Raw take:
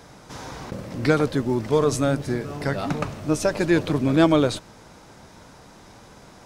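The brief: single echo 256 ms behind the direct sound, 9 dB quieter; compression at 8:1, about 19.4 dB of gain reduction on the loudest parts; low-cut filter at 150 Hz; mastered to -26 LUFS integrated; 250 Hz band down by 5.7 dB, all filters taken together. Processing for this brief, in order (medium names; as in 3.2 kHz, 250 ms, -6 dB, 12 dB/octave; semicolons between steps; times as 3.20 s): high-pass 150 Hz; peaking EQ 250 Hz -7.5 dB; compression 8:1, threshold -37 dBFS; delay 256 ms -9 dB; trim +15.5 dB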